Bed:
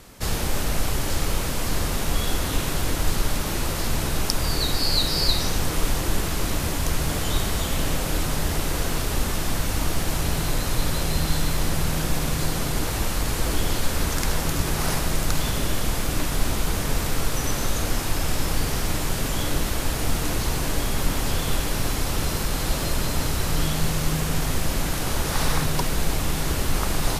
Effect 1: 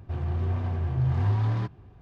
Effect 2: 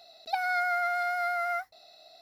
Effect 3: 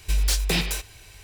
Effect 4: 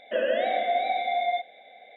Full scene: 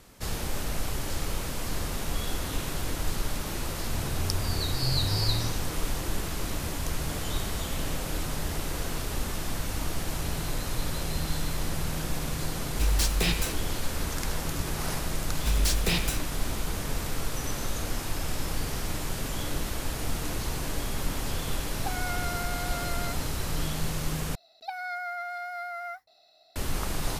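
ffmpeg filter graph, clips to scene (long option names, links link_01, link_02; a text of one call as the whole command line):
ffmpeg -i bed.wav -i cue0.wav -i cue1.wav -i cue2.wav -filter_complex "[3:a]asplit=2[link_01][link_02];[2:a]asplit=2[link_03][link_04];[0:a]volume=-7dB[link_05];[link_03]aemphasis=mode=reproduction:type=cd[link_06];[link_05]asplit=2[link_07][link_08];[link_07]atrim=end=24.354[link_09];[link_04]atrim=end=2.21,asetpts=PTS-STARTPTS,volume=-6.5dB[link_10];[link_08]atrim=start=26.556[link_11];[1:a]atrim=end=2.01,asetpts=PTS-STARTPTS,volume=-6dB,afade=type=in:duration=0.004:curve=hsin,afade=type=out:start_time=2.006:duration=0.004:curve=hsin,adelay=169785S[link_12];[link_01]atrim=end=1.23,asetpts=PTS-STARTPTS,volume=-3.5dB,afade=type=in:duration=0.004:curve=hsin,afade=type=out:start_time=1.226:duration=0.004:curve=hsin,adelay=12710[link_13];[link_02]atrim=end=1.23,asetpts=PTS-STARTPTS,volume=-3.5dB,afade=type=in:duration=0.004:curve=hsin,afade=type=out:start_time=1.226:duration=0.004:curve=hsin,adelay=15370[link_14];[link_06]atrim=end=2.21,asetpts=PTS-STARTPTS,volume=-7dB,afade=type=in:duration=0.004:curve=hsin,afade=type=out:start_time=2.206:duration=0.004:curve=hsin,adelay=21530[link_15];[link_09][link_10]acrossfade=duration=0.004:curve1=hsin:curve2=hsin[link_16];[link_16][link_11]acrossfade=duration=0.004:curve1=hsin:curve2=hsin[link_17];[link_17][link_12][link_13][link_14][link_15]amix=inputs=5:normalize=0" out.wav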